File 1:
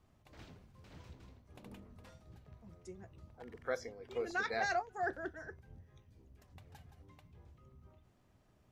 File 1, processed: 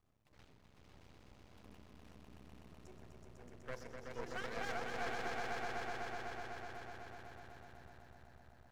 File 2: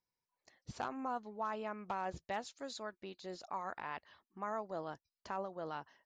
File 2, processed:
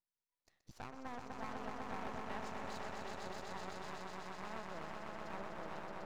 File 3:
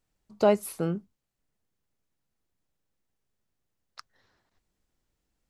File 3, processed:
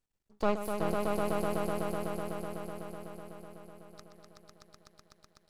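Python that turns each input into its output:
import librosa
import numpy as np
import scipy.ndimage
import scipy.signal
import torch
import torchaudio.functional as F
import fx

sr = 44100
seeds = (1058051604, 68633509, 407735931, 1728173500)

y = fx.echo_swell(x, sr, ms=125, loudest=5, wet_db=-4)
y = np.maximum(y, 0.0)
y = y * librosa.db_to_amplitude(-5.5)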